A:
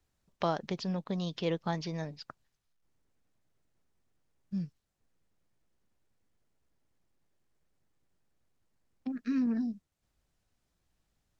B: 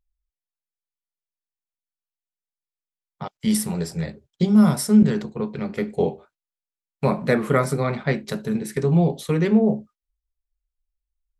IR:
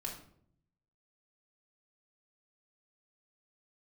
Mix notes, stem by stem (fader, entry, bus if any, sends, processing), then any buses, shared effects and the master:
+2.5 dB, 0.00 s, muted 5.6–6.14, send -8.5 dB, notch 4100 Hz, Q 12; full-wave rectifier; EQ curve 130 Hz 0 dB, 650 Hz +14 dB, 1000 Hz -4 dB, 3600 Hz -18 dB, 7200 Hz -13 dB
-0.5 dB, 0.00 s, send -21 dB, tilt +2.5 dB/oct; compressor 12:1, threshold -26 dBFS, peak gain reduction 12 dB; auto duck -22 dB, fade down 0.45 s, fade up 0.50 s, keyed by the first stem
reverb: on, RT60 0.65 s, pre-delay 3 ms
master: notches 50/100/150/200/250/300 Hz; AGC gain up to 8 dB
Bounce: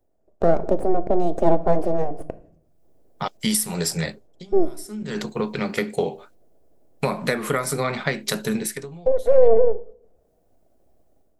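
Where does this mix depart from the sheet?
stem B: send off; master: missing notches 50/100/150/200/250/300 Hz

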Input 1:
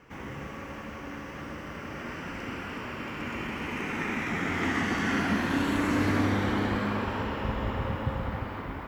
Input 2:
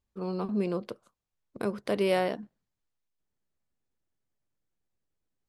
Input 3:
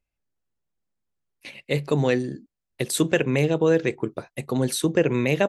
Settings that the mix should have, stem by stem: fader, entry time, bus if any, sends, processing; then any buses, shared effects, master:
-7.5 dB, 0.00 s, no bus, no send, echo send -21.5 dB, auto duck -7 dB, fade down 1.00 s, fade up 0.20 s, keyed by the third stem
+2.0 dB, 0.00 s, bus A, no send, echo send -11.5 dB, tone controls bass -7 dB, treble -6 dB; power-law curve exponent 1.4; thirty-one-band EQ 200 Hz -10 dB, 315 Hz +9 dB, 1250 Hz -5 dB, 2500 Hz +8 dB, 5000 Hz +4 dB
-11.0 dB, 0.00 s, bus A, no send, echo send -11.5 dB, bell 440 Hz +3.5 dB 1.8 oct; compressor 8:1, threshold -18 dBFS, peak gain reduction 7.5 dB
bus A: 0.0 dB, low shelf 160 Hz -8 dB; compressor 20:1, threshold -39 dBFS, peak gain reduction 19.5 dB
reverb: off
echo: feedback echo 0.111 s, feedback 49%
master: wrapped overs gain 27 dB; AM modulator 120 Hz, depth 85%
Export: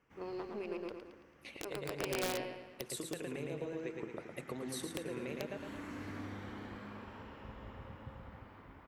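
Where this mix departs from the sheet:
stem 1 -7.5 dB -> -19.0 dB; master: missing AM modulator 120 Hz, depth 85%

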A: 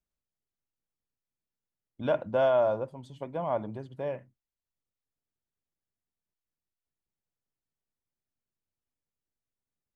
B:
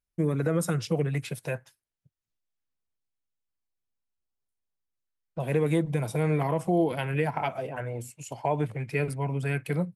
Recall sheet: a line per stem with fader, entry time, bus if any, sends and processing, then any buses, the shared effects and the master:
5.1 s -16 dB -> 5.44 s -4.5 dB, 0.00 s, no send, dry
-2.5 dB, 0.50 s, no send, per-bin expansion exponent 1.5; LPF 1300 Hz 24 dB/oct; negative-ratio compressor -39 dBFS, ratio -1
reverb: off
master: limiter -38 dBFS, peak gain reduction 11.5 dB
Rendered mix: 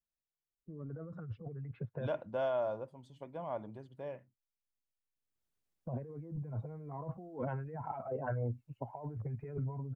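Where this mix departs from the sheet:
stem A -16.0 dB -> -9.5 dB; master: missing limiter -38 dBFS, peak gain reduction 11.5 dB

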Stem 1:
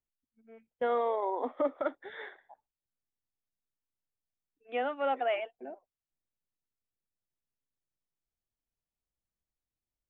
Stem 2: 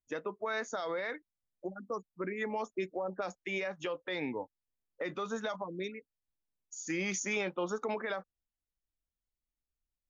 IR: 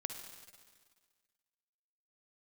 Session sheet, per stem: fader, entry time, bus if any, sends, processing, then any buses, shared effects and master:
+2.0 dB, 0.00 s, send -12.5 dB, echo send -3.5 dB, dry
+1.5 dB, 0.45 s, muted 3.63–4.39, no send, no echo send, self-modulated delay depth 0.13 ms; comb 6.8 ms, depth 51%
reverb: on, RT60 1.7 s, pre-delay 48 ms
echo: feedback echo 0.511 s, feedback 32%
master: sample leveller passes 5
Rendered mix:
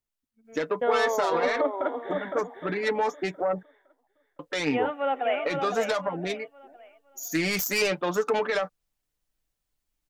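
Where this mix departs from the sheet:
stem 2 +1.5 dB -> +8.5 dB; master: missing sample leveller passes 5

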